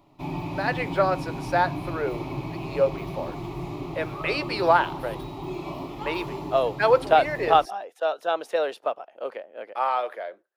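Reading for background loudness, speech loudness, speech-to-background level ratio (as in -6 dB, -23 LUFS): -34.0 LUFS, -25.5 LUFS, 8.5 dB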